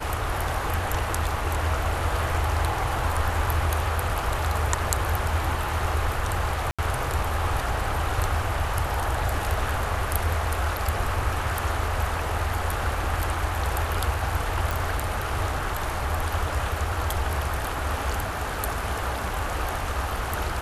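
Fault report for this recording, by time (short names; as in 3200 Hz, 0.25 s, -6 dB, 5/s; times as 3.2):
6.71–6.79 gap 76 ms
14.71 pop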